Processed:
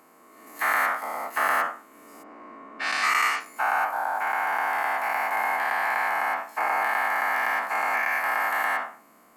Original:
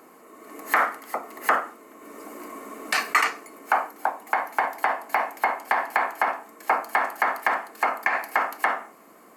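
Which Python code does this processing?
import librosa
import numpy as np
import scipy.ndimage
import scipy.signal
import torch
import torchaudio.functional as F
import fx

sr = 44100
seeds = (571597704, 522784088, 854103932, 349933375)

y = fx.spec_dilate(x, sr, span_ms=240)
y = fx.peak_eq(y, sr, hz=400.0, db=-7.0, octaves=0.87)
y = fx.env_lowpass(y, sr, base_hz=1700.0, full_db=-9.5, at=(2.22, 3.39), fade=0.02)
y = y * 10.0 ** (-8.5 / 20.0)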